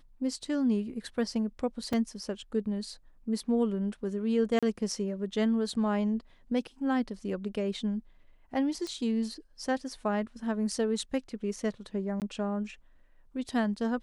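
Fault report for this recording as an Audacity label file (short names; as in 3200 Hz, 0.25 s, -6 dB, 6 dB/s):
1.930000	1.930000	gap 3.8 ms
4.590000	4.630000	gap 36 ms
8.870000	8.870000	pop -26 dBFS
12.200000	12.220000	gap 18 ms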